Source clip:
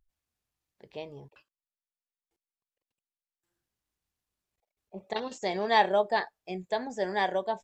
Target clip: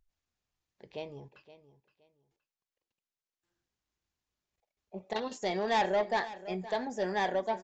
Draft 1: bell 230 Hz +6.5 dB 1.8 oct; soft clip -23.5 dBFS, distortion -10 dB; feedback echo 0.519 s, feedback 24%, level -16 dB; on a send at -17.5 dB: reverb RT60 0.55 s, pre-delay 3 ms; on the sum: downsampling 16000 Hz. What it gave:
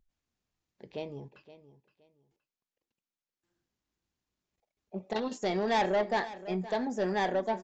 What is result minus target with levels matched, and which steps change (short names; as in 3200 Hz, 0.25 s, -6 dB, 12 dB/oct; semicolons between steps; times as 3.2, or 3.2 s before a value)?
250 Hz band +3.5 dB
remove: bell 230 Hz +6.5 dB 1.8 oct